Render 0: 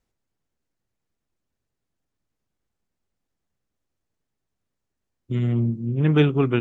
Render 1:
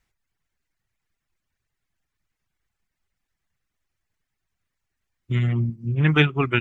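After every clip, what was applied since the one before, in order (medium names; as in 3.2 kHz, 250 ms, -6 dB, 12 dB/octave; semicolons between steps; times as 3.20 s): reverb removal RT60 0.92 s; graphic EQ 250/500/2000 Hz -6/-7/+7 dB; trim +4.5 dB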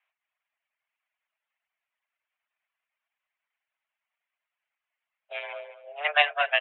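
feedback delay 213 ms, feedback 16%, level -13 dB; mistuned SSB +290 Hz 370–2900 Hz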